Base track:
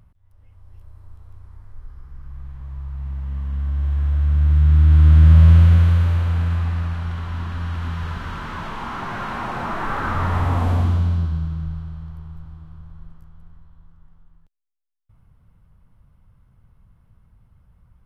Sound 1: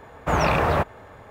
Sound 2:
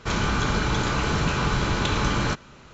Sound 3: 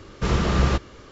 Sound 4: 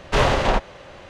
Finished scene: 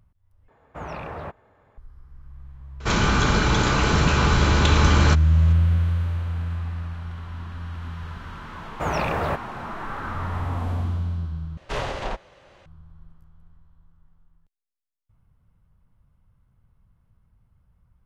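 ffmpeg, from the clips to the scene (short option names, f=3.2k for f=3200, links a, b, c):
-filter_complex "[1:a]asplit=2[a][b];[0:a]volume=-7.5dB[c];[a]lowpass=f=2.8k:p=1[d];[2:a]acontrast=82[e];[4:a]equalizer=f=240:w=1.5:g=-3[f];[c]asplit=3[g][h][i];[g]atrim=end=0.484[j];[d]atrim=end=1.3,asetpts=PTS-STARTPTS,volume=-13.5dB[k];[h]atrim=start=1.776:end=11.574[l];[f]atrim=end=1.09,asetpts=PTS-STARTPTS,volume=-10dB[m];[i]atrim=start=12.656[n];[e]atrim=end=2.73,asetpts=PTS-STARTPTS,volume=-3dB,afade=t=in:d=0.004:c=hsin,afade=t=out:st=2.726:d=0.004:c=hsin,adelay=2800[o];[b]atrim=end=1.3,asetpts=PTS-STARTPTS,volume=-4.5dB,afade=t=in:d=0.004:c=hsin,afade=t=out:st=1.296:d=0.004:c=hsin,adelay=8530[p];[j][k]acrossfade=d=0.004:c1=hsin:c2=hsin[q];[q][l]acrossfade=d=0.004:c1=hsin:c2=hsin[r];[r][m]acrossfade=d=0.004:c1=hsin:c2=hsin[s];[s][n]acrossfade=d=0.004:c1=hsin:c2=hsin[t];[t][o][p]amix=inputs=3:normalize=0"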